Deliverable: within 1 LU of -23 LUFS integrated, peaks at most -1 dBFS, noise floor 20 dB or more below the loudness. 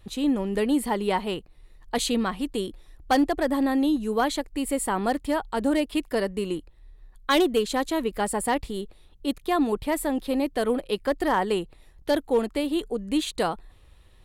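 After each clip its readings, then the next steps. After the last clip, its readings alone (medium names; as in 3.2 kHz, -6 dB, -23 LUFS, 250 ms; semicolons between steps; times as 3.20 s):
clipped samples 0.2%; clipping level -14.5 dBFS; loudness -26.0 LUFS; peak level -14.5 dBFS; loudness target -23.0 LUFS
-> clip repair -14.5 dBFS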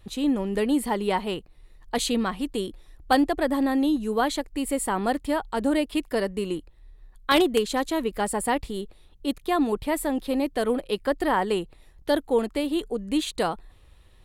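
clipped samples 0.0%; loudness -26.0 LUFS; peak level -5.5 dBFS; loudness target -23.0 LUFS
-> trim +3 dB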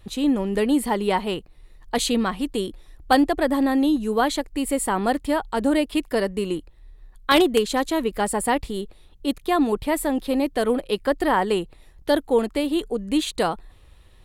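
loudness -23.0 LUFS; peak level -2.5 dBFS; noise floor -51 dBFS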